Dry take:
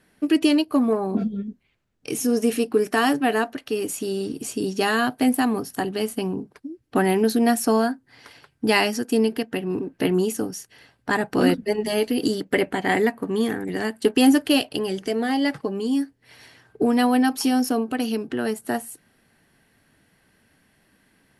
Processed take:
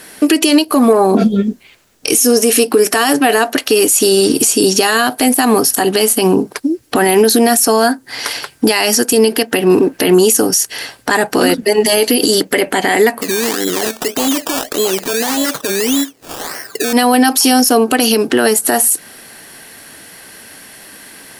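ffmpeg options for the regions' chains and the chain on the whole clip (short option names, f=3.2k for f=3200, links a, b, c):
-filter_complex "[0:a]asettb=1/sr,asplit=3[a][b][c];[a]atrim=end=13.214[d];[b]atrim=start=13.21:end=16.93,asetpts=PTS-STARTPTS,afade=t=in:d=0.004:c=qsin,afade=t=out:st=3.716:d=0.004:c=qsin,highpass=180,equalizer=f=900:t=o:w=0.25:g=-15,acrusher=samples=17:mix=1:aa=0.000001:lfo=1:lforange=10.2:lforate=1.7[e];[c]atrim=start=16.926[f];[d][e]acrossfade=d=0.004:c1=hsin:c2=qsin[g];[g][f]acrossfade=d=0.004:c1=qsin:c2=hsin,bass=f=250:g=-12,treble=f=4k:g=9,acompressor=threshold=-32dB:ratio=2,alimiter=level_in=25dB:limit=-1dB:release=50:level=0:latency=1,volume=-1dB"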